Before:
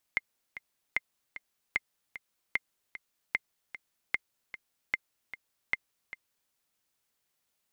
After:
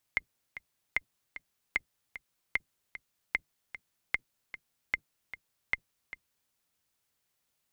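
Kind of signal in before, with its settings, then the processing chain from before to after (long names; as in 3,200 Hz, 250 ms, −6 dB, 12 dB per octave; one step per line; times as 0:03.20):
click track 151 BPM, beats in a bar 2, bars 8, 2,100 Hz, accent 14 dB −13.5 dBFS
sub-octave generator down 1 octave, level 0 dB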